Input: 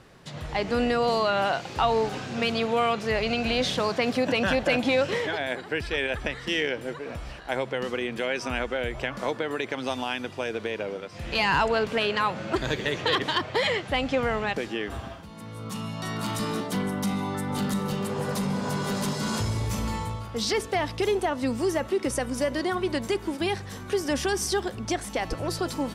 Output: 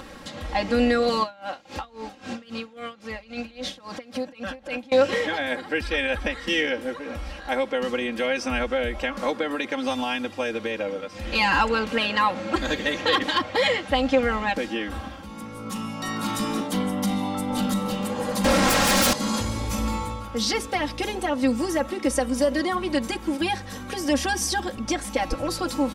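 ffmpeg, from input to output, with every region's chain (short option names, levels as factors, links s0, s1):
-filter_complex "[0:a]asettb=1/sr,asplit=3[s0][s1][s2];[s0]atrim=end=1.234[s3];[s1]atrim=start=1.23:end=4.92,asetpts=PTS-STARTPTS,afade=t=in:d=0.004:c=qsin,afade=t=out:st=3.686:d=0.004:c=qsin,acompressor=threshold=0.0398:ratio=6:attack=3.2:release=140:knee=1:detection=peak,aeval=exprs='val(0)*pow(10,-22*(0.5-0.5*cos(2*PI*3.7*n/s))/20)':c=same[s4];[s2]atrim=start=4.916[s5];[s3][s4]acrossfade=d=0.004:c1=hsin:c2=qsin[s6];[s6][s5]acrossfade=d=0.004:c1=qsin:c2=hsin,asettb=1/sr,asplit=3[s7][s8][s9];[s7]atrim=end=18.444[s10];[s8]atrim=start=18.44:end=19.13,asetpts=PTS-STARTPTS,afade=t=in:d=0.004:c=qsin,afade=t=out:st=0.686:d=0.004:c=qsin,equalizer=f=520:t=o:w=1.4:g=-7,aeval=exprs='0.112*sin(PI/2*4.47*val(0)/0.112)':c=same[s11];[s9]atrim=start=19.126[s12];[s10][s11]acrossfade=d=0.004:c1=hsin:c2=qsin[s13];[s13][s12]acrossfade=d=0.004:c1=qsin:c2=hsin,acompressor=mode=upward:threshold=0.0178:ratio=2.5,aecho=1:1:3.7:1"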